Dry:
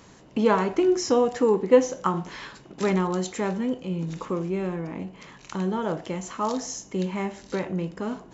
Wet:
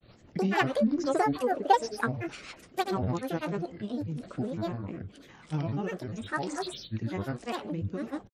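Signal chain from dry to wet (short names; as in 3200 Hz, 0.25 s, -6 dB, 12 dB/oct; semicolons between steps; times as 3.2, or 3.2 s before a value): grains 0.1 s, grains 20/s, pitch spread up and down by 12 st; rotary speaker horn 6.3 Hz, later 1.1 Hz, at 2.89; gain -2 dB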